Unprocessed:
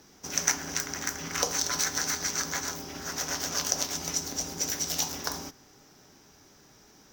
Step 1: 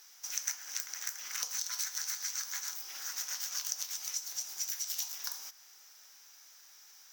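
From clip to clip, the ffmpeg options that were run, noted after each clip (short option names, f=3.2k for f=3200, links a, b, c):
-af "highpass=1.4k,highshelf=f=7.5k:g=10.5,acompressor=threshold=-39dB:ratio=2,volume=-1.5dB"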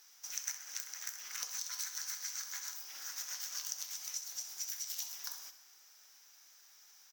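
-af "aecho=1:1:64|128|192|256|320|384:0.251|0.136|0.0732|0.0396|0.0214|0.0115,volume=-4.5dB"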